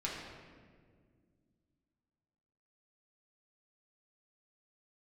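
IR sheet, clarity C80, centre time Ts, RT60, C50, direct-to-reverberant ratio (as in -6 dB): 3.0 dB, 81 ms, 1.9 s, 1.0 dB, -5.0 dB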